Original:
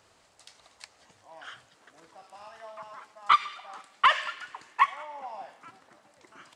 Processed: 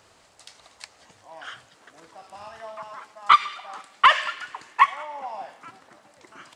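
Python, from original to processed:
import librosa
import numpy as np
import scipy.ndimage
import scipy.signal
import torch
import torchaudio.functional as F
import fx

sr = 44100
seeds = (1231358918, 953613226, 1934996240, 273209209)

y = fx.low_shelf(x, sr, hz=170.0, db=10.5, at=(2.26, 2.75))
y = y * librosa.db_to_amplitude(5.5)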